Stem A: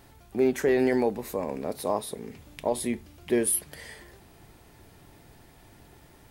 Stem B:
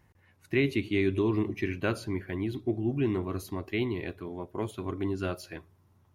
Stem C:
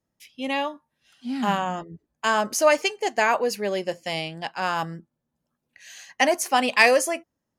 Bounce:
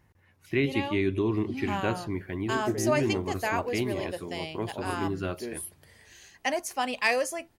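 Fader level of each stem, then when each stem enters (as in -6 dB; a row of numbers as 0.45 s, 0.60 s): -13.0 dB, 0.0 dB, -8.5 dB; 2.10 s, 0.00 s, 0.25 s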